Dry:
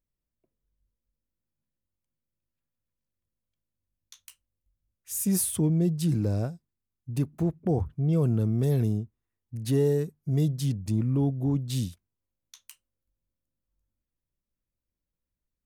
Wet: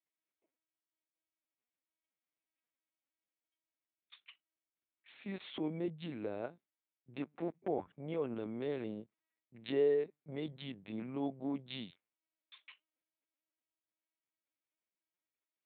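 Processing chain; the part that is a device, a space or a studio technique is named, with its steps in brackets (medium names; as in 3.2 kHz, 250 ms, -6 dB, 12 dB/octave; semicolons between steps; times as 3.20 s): talking toy (LPC vocoder at 8 kHz pitch kept; high-pass 430 Hz 12 dB/octave; peaking EQ 2.2 kHz +6.5 dB 0.39 oct); trim -2 dB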